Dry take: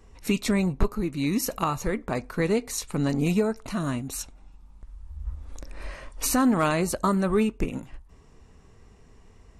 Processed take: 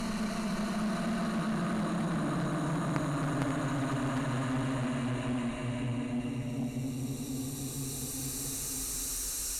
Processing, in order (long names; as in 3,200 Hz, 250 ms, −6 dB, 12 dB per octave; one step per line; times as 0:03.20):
extreme stretch with random phases 20×, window 0.25 s, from 0:03.70
harmonic generator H 3 −7 dB, 5 −12 dB, 8 −35 dB, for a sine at −14.5 dBFS